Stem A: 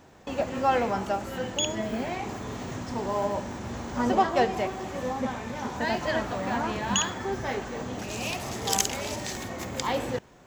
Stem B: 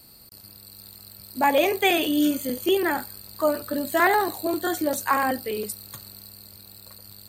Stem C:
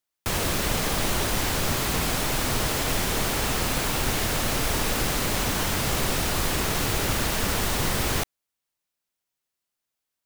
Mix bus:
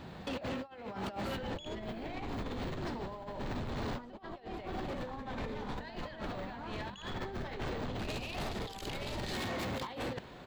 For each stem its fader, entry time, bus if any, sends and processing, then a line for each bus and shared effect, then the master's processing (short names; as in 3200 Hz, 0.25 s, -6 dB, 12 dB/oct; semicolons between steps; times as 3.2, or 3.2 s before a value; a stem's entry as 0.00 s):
-1.5 dB, 0.00 s, no send, resonant high shelf 5000 Hz -6 dB, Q 3
-8.5 dB, 0.00 s, muted 2.94–4.09, no send, LPF 1100 Hz 12 dB/oct; bell 170 Hz +13.5 dB 0.48 oct; negative-ratio compressor -30 dBFS, ratio -1
-8.0 dB, 1.10 s, no send, Bessel low-pass 520 Hz, order 2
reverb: off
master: negative-ratio compressor -35 dBFS, ratio -0.5; soft clip -33.5 dBFS, distortion -10 dB